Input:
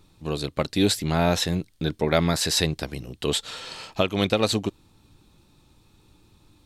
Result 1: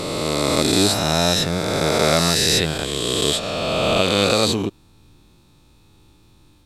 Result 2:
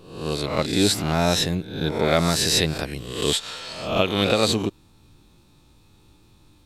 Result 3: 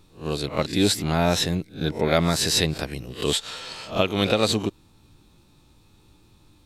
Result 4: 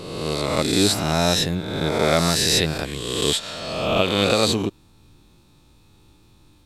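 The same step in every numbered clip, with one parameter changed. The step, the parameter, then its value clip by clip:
peak hold with a rise ahead of every peak, rising 60 dB in: 3.17, 0.67, 0.3, 1.4 seconds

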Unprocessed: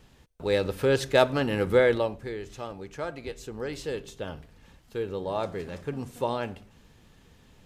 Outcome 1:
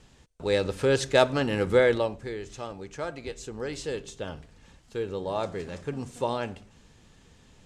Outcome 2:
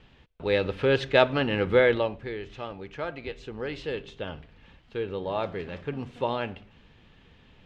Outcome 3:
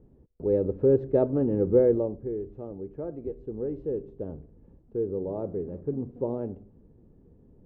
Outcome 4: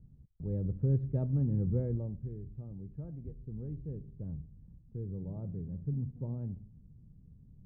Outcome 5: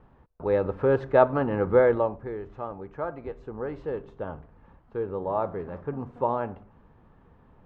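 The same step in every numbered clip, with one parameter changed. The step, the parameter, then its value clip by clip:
low-pass with resonance, frequency: 7,900, 3,000, 390, 150, 1,100 Hertz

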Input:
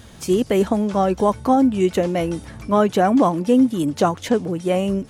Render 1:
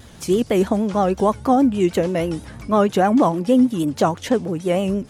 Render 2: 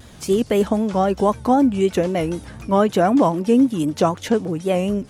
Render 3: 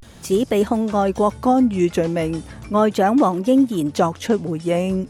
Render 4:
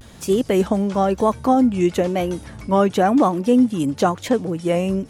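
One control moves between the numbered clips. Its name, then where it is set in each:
pitch vibrato, speed: 6.3, 3.9, 0.38, 1 Hertz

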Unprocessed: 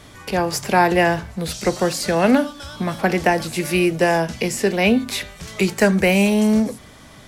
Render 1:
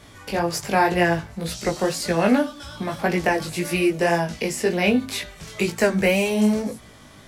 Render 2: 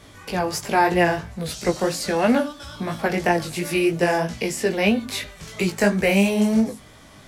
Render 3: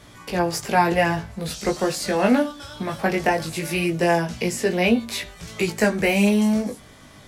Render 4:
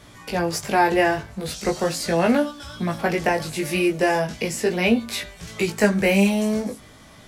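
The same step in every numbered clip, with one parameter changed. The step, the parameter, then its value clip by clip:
chorus effect, speed: 1.9, 3, 0.21, 0.39 Hertz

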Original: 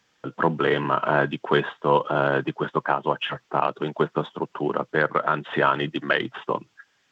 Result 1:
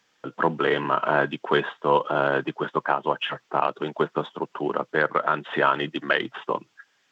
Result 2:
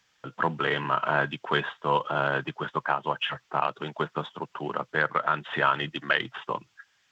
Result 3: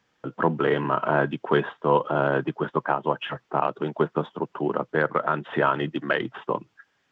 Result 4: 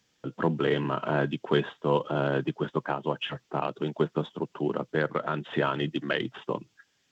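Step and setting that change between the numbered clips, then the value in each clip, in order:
parametric band, centre frequency: 70, 320, 16,000, 1,200 Hertz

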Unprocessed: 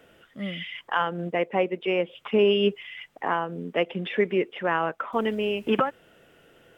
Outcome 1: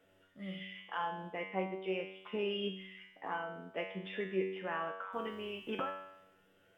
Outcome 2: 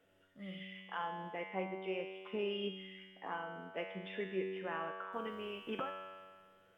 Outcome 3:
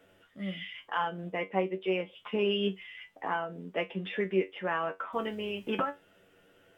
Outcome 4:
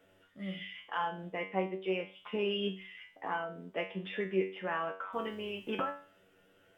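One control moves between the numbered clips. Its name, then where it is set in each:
tuned comb filter, decay: 0.82, 1.7, 0.17, 0.39 seconds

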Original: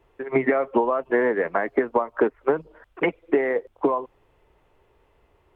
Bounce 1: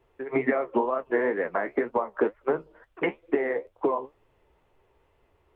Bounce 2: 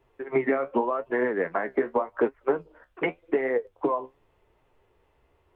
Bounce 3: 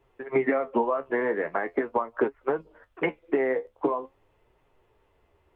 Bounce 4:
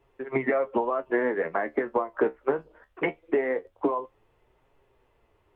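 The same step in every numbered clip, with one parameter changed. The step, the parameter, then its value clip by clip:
flanger, speed: 2.1, 0.86, 0.43, 0.21 Hertz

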